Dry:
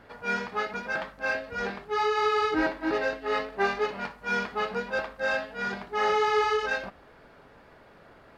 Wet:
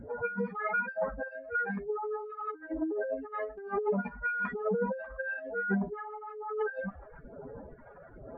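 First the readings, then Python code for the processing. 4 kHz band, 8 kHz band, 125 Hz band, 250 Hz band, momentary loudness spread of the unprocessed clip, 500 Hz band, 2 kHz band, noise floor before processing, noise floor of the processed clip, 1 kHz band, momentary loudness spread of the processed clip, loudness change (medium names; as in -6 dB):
under -35 dB, no reading, +4.0 dB, -0.5 dB, 8 LU, -4.5 dB, -6.0 dB, -54 dBFS, -52 dBFS, -8.5 dB, 16 LU, -6.0 dB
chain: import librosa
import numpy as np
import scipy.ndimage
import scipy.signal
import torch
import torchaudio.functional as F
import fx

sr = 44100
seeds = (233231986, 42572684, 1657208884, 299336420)

y = fx.spec_expand(x, sr, power=3.1)
y = fx.over_compress(y, sr, threshold_db=-35.0, ratio=-1.0)
y = fx.phaser_stages(y, sr, stages=2, low_hz=240.0, high_hz=4300.0, hz=1.1, feedback_pct=30)
y = y * 10.0 ** (3.5 / 20.0)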